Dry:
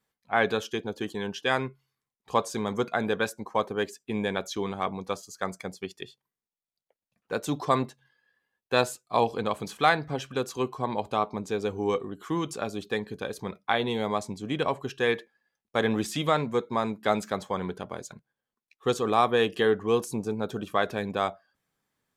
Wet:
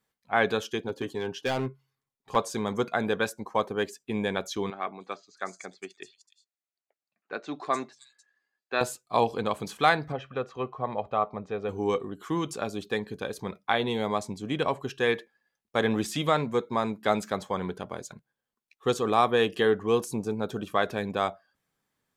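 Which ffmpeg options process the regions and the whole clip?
ffmpeg -i in.wav -filter_complex "[0:a]asettb=1/sr,asplit=3[link_01][link_02][link_03];[link_01]atrim=end=0.884[link_04];[link_02]atrim=start=0.88:end=2.36,asetpts=PTS-STARTPTS,afade=type=in:duration=0.004:curve=qsin,afade=type=out:start_time=1.476:duration=0.004:curve=qsin,highshelf=frequency=2200:gain=-4.5,aecho=1:1:7.4:0.49,atrim=end_sample=65268,asoftclip=type=hard:threshold=-23dB[link_05];[link_03]atrim=start=2.356[link_06];[link_04][link_05]acrossfade=duration=0.004:curve1=hsin:curve2=qsin[link_07];[link_07][link_06]acrossfade=duration=0.004:curve1=qsin:curve2=hsin,asettb=1/sr,asplit=3[link_08][link_09][link_10];[link_08]atrim=end=4.704[link_11];[link_09]atrim=start=4.7:end=8.81,asetpts=PTS-STARTPTS,afade=type=in:duration=0.004:curve=qsin,afade=type=out:start_time=4.106:duration=0.004:curve=qsin,highpass=360,equalizer=frequency=500:width_type=q:width=4:gain=-9,equalizer=frequency=940:width_type=q:width=4:gain=-7,equalizer=frequency=3200:width_type=q:width=4:gain=-8,equalizer=frequency=5500:width_type=q:width=4:gain=-5,lowpass=frequency=7500:width=0.5412,lowpass=frequency=7500:width=1.3066,acrossover=split=4800[link_12][link_13];[link_13]adelay=300[link_14];[link_12][link_14]amix=inputs=2:normalize=0,atrim=end_sample=181251[link_15];[link_10]atrim=start=8.806[link_16];[link_11][link_15]acrossfade=duration=0.004:curve1=hsin:curve2=qsin[link_17];[link_17][link_16]acrossfade=duration=0.004:curve1=qsin:curve2=hsin,asettb=1/sr,asplit=3[link_18][link_19][link_20];[link_18]atrim=end=10.124[link_21];[link_19]atrim=start=10.12:end=11.69,asetpts=PTS-STARTPTS,afade=type=in:duration=0.004:curve=qsin,afade=type=out:start_time=1.566:duration=0.004:curve=qsin,lowpass=2000,lowshelf=frequency=410:gain=-4.5,aecho=1:1:1.6:0.4,atrim=end_sample=69237[link_22];[link_20]atrim=start=11.686[link_23];[link_21][link_22]acrossfade=duration=0.004:curve1=hsin:curve2=qsin[link_24];[link_24][link_23]acrossfade=duration=0.004:curve1=qsin:curve2=hsin" out.wav

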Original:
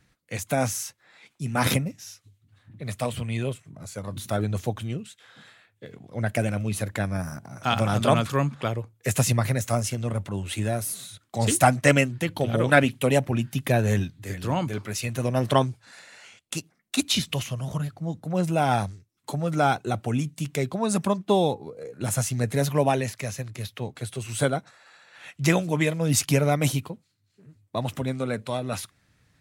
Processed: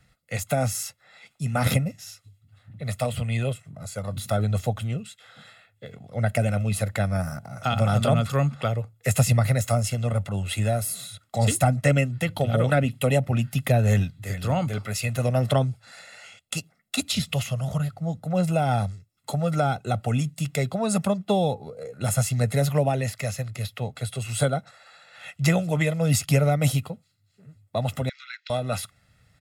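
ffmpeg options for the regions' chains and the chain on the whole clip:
ffmpeg -i in.wav -filter_complex "[0:a]asettb=1/sr,asplit=3[link_01][link_02][link_03];[link_01]atrim=end=28.094[link_04];[link_02]atrim=start=28.09:end=28.5,asetpts=PTS-STARTPTS,afade=type=in:duration=0.004:curve=qsin,afade=type=out:start_time=0.406:duration=0.004:curve=qsin,asuperpass=centerf=3100:order=12:qfactor=0.69,acompressor=mode=upward:threshold=-45dB:ratio=2.5:attack=3.2:release=140:knee=2.83:detection=peak[link_05];[link_03]atrim=start=28.496[link_06];[link_04][link_05]acrossfade=duration=0.004:curve1=hsin:curve2=qsin[link_07];[link_07][link_06]acrossfade=duration=0.004:curve1=qsin:curve2=hsin,bandreject=frequency=6000:width=13,aecho=1:1:1.5:0.61,acrossover=split=410[link_08][link_09];[link_09]acompressor=threshold=-25dB:ratio=5[link_10];[link_08][link_10]amix=inputs=2:normalize=0,volume=1dB" out.wav

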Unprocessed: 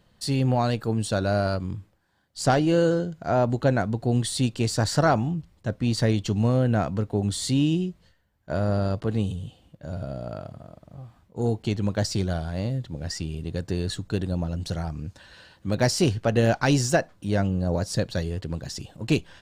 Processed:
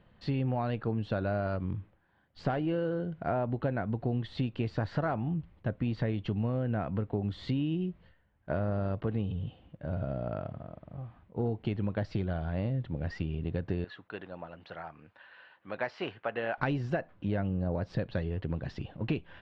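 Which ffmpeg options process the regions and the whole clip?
ffmpeg -i in.wav -filter_complex "[0:a]asettb=1/sr,asplit=3[link_01][link_02][link_03];[link_01]atrim=end=13.844[link_04];[link_02]atrim=start=13.84:end=16.58,asetpts=PTS-STARTPTS,afade=type=in:duration=0.004:curve=qsin,afade=type=out:start_time=2.736:duration=0.004:curve=qsin,highpass=1000,aemphasis=mode=reproduction:type=riaa[link_05];[link_03]atrim=start=16.576[link_06];[link_04][link_05]acrossfade=duration=0.004:curve1=hsin:curve2=qsin[link_07];[link_07][link_06]acrossfade=duration=0.004:curve1=qsin:curve2=hsin,deesser=0.55,lowpass=frequency=2900:width=0.5412,lowpass=frequency=2900:width=1.3066,acompressor=threshold=-28dB:ratio=6" out.wav

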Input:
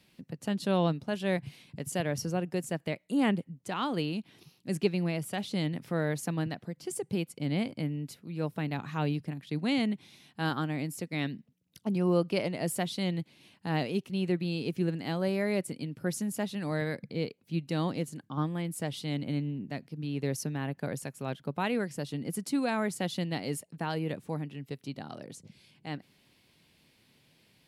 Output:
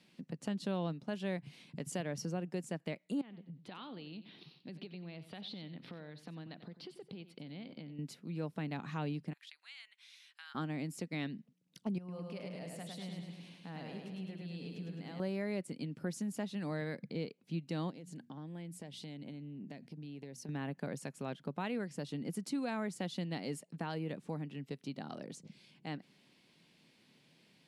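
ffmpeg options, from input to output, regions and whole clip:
ffmpeg -i in.wav -filter_complex "[0:a]asettb=1/sr,asplit=3[link_01][link_02][link_03];[link_01]atrim=end=3.214[link_04];[link_02]atrim=start=3.21:end=7.99,asetpts=PTS-STARTPTS,afade=type=in:duration=0.004:curve=qsin,afade=type=out:start_time=4.776:duration=0.004:curve=qsin,acompressor=threshold=-43dB:ratio=16:attack=3.2:release=140:knee=1:detection=peak,highshelf=frequency=5300:width_type=q:width=3:gain=-10.5,aecho=1:1:92|184:0.211|0.0359,atrim=end_sample=210798[link_05];[link_03]atrim=start=7.986[link_06];[link_04][link_05]acrossfade=duration=0.004:curve1=hsin:curve2=qsin[link_07];[link_07][link_06]acrossfade=duration=0.004:curve1=qsin:curve2=hsin,asettb=1/sr,asplit=3[link_08][link_09][link_10];[link_08]atrim=end=9.334[link_11];[link_09]atrim=start=9.33:end=10.55,asetpts=PTS-STARTPTS,afade=type=in:duration=0.004:curve=qsin,afade=type=out:start_time=1.216:duration=0.004:curve=qsin,acompressor=threshold=-38dB:ratio=10:attack=3.2:release=140:knee=1:detection=peak,highpass=frequency=1400:width=0.5412,highpass=frequency=1400:width=1.3066[link_12];[link_10]atrim=start=10.546[link_13];[link_11][link_12]acrossfade=duration=0.004:curve1=hsin:curve2=qsin[link_14];[link_14][link_13]acrossfade=duration=0.004:curve1=qsin:curve2=hsin,asettb=1/sr,asplit=3[link_15][link_16][link_17];[link_15]atrim=end=11.984[link_18];[link_16]atrim=start=11.98:end=15.2,asetpts=PTS-STARTPTS,afade=type=in:duration=0.004:curve=qsin,afade=type=out:start_time=3.216:duration=0.004:curve=qsin,bandreject=frequency=350:width=7.1,acompressor=threshold=-50dB:ratio=2.5:attack=3.2:release=140:knee=1:detection=peak,aecho=1:1:105|210|315|420|525|630|735|840|945:0.708|0.418|0.246|0.145|0.0858|0.0506|0.0299|0.0176|0.0104,atrim=end_sample=142002[link_19];[link_17]atrim=start=15.196[link_20];[link_18][link_19]acrossfade=duration=0.004:curve1=hsin:curve2=qsin[link_21];[link_21][link_20]acrossfade=duration=0.004:curve1=qsin:curve2=hsin,asettb=1/sr,asplit=3[link_22][link_23][link_24];[link_22]atrim=end=17.904[link_25];[link_23]atrim=start=17.9:end=20.49,asetpts=PTS-STARTPTS,afade=type=in:duration=0.004:curve=qsin,afade=type=out:start_time=2.586:duration=0.004:curve=qsin,equalizer=frequency=1200:width_type=o:width=0.29:gain=-12,bandreject=frequency=60:width_type=h:width=6,bandreject=frequency=120:width_type=h:width=6,bandreject=frequency=180:width_type=h:width=6,bandreject=frequency=240:width_type=h:width=6,acompressor=threshold=-42dB:ratio=8:attack=3.2:release=140:knee=1:detection=peak[link_26];[link_24]atrim=start=20.486[link_27];[link_25][link_26]acrossfade=duration=0.004:curve1=hsin:curve2=qsin[link_28];[link_28][link_27]acrossfade=duration=0.004:curve1=qsin:curve2=hsin,lowpass=8600,lowshelf=frequency=120:width_type=q:width=1.5:gain=-11,acompressor=threshold=-37dB:ratio=2,volume=-2dB" out.wav

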